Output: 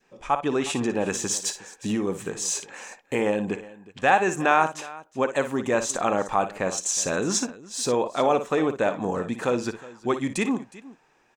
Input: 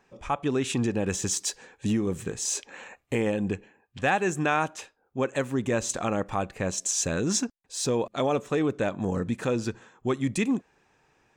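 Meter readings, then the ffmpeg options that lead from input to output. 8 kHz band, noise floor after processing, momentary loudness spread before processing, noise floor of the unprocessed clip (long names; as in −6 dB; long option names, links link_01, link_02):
+2.0 dB, −63 dBFS, 7 LU, −70 dBFS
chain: -af "equalizer=frequency=71:width_type=o:width=1.7:gain=-13.5,aecho=1:1:57|364:0.282|0.112,adynamicequalizer=threshold=0.00891:dfrequency=910:dqfactor=0.91:tfrequency=910:tqfactor=0.91:attack=5:release=100:ratio=0.375:range=3:mode=boostabove:tftype=bell,volume=1.5dB"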